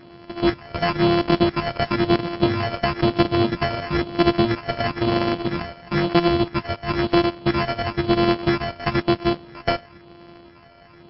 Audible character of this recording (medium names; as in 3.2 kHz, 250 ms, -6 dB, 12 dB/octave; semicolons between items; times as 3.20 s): a buzz of ramps at a fixed pitch in blocks of 128 samples; phasing stages 8, 1 Hz, lowest notch 280–4100 Hz; aliases and images of a low sample rate 3.7 kHz, jitter 0%; MP3